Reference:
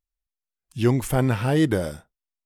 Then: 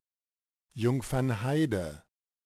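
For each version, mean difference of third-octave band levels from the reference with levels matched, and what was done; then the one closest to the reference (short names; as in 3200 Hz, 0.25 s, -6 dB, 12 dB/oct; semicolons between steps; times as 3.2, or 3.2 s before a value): 1.0 dB: CVSD 64 kbps; gain -7.5 dB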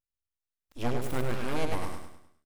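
8.5 dB: full-wave rectifier; feedback echo 0.102 s, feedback 42%, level -5 dB; gain -8 dB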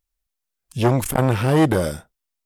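3.0 dB: high shelf 5400 Hz +3.5 dB; core saturation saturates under 660 Hz; gain +6.5 dB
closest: first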